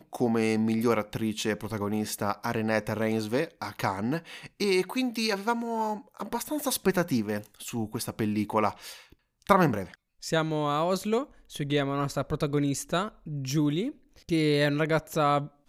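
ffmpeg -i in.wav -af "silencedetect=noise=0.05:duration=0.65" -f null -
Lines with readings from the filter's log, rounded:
silence_start: 8.69
silence_end: 9.49 | silence_duration: 0.80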